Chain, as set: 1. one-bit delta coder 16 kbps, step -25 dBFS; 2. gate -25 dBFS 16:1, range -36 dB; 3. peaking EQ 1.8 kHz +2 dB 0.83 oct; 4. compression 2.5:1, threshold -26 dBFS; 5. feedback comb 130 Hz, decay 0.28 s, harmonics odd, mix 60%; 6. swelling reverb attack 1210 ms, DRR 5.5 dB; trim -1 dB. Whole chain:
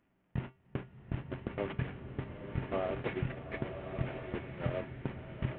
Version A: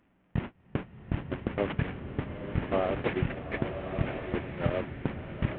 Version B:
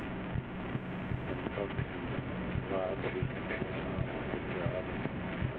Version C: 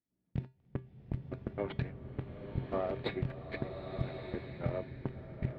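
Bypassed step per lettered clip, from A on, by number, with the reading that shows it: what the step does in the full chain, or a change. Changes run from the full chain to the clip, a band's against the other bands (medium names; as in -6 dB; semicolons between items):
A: 5, 125 Hz band -2.0 dB; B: 2, momentary loudness spread change -4 LU; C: 1, 2 kHz band -3.5 dB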